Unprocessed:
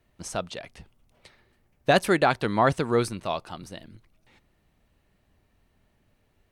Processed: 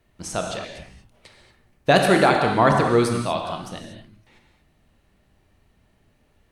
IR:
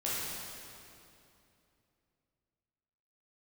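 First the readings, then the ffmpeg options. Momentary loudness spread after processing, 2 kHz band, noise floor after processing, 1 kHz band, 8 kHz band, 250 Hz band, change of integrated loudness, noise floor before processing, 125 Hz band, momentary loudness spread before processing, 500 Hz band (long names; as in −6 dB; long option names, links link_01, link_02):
17 LU, +5.0 dB, −63 dBFS, +5.5 dB, +5.5 dB, +6.0 dB, +5.0 dB, −69 dBFS, +6.0 dB, 19 LU, +5.0 dB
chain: -filter_complex "[0:a]asplit=2[link_01][link_02];[1:a]atrim=start_sample=2205,afade=type=out:start_time=0.18:duration=0.01,atrim=end_sample=8379,asetrate=23814,aresample=44100[link_03];[link_02][link_03]afir=irnorm=-1:irlink=0,volume=-7dB[link_04];[link_01][link_04]amix=inputs=2:normalize=0"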